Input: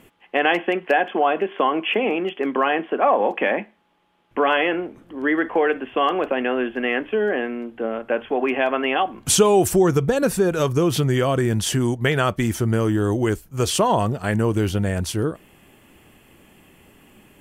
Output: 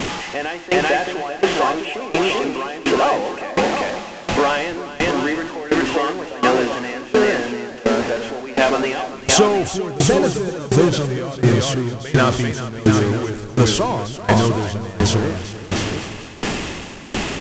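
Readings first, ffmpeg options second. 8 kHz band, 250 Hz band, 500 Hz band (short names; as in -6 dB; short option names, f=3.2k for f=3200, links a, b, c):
+2.5 dB, +2.5 dB, +1.5 dB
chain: -filter_complex "[0:a]aeval=exprs='val(0)+0.5*0.106*sgn(val(0))':c=same,asplit=2[a][b];[b]aecho=0:1:390|702|951.6|1151|1311:0.631|0.398|0.251|0.158|0.1[c];[a][c]amix=inputs=2:normalize=0,aresample=16000,aresample=44100,aeval=exprs='val(0)*pow(10,-20*if(lt(mod(1.4*n/s,1),2*abs(1.4)/1000),1-mod(1.4*n/s,1)/(2*abs(1.4)/1000),(mod(1.4*n/s,1)-2*abs(1.4)/1000)/(1-2*abs(1.4)/1000))/20)':c=same,volume=3.5dB"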